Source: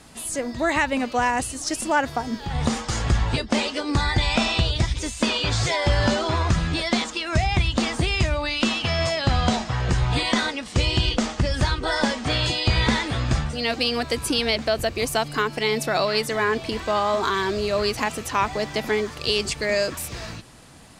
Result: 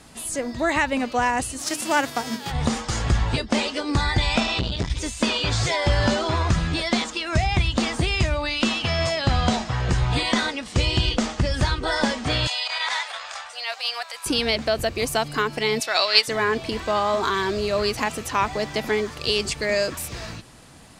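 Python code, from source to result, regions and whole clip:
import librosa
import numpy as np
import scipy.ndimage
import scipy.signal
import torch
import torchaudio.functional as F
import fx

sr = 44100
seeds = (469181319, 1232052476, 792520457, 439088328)

y = fx.envelope_flatten(x, sr, power=0.6, at=(1.58, 2.5), fade=0.02)
y = fx.highpass(y, sr, hz=96.0, slope=24, at=(1.58, 2.5), fade=0.02)
y = fx.hum_notches(y, sr, base_hz=50, count=10, at=(1.58, 2.5), fade=0.02)
y = fx.chain(y, sr, fx.lowpass(hz=7500.0, slope=12),
    fx.transformer_sat(knee_hz=360.0), at=(4.4, 4.9))
y = fx.chain(y, sr, fx.transient(attack_db=-12, sustain_db=-2),
    fx.cheby2_highpass(hz=340.0, order=4, stop_db=40), at=(12.47, 14.26))
y = fx.chain(y, sr, fx.highpass(hz=500.0, slope=12),
    fx.peak_eq(hz=4000.0, db=11.0, octaves=2.6),
    fx.upward_expand(threshold_db=-25.0, expansion=1.5), at=(15.8, 16.28))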